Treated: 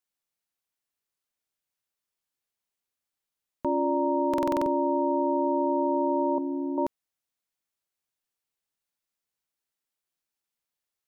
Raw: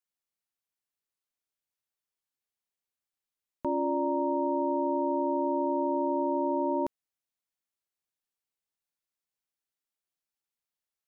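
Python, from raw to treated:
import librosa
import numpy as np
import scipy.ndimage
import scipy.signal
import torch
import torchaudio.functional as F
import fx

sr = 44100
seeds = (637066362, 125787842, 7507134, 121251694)

y = fx.band_shelf(x, sr, hz=670.0, db=-15.0, octaves=1.7, at=(6.38, 6.78))
y = fx.buffer_glitch(y, sr, at_s=(4.29,), block=2048, repeats=7)
y = y * 10.0 ** (3.0 / 20.0)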